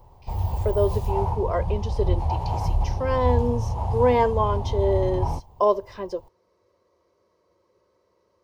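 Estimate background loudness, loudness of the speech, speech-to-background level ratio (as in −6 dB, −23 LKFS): −27.0 LKFS, −25.5 LKFS, 1.5 dB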